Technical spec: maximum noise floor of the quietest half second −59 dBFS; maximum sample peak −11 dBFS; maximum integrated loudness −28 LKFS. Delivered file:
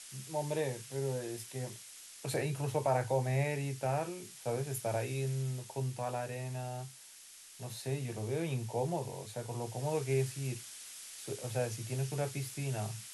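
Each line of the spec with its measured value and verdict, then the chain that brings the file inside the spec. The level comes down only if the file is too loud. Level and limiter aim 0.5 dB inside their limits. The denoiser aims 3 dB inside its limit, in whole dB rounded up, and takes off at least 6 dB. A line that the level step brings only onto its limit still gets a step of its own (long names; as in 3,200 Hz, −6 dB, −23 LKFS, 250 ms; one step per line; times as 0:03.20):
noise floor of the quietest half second −54 dBFS: out of spec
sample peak −19.0 dBFS: in spec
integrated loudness −37.0 LKFS: in spec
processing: broadband denoise 8 dB, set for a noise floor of −54 dBFS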